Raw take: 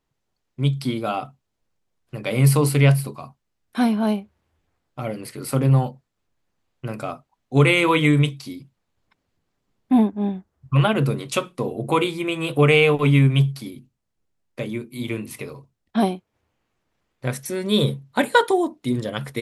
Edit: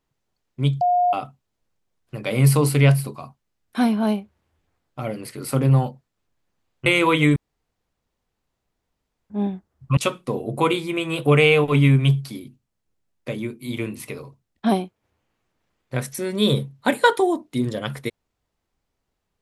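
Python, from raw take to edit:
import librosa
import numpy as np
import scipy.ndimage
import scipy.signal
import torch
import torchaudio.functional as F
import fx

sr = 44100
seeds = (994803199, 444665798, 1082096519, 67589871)

y = fx.edit(x, sr, fx.bleep(start_s=0.81, length_s=0.32, hz=714.0, db=-15.0),
    fx.cut(start_s=6.86, length_s=0.82),
    fx.room_tone_fill(start_s=8.18, length_s=1.94),
    fx.cut(start_s=10.79, length_s=0.49), tone=tone)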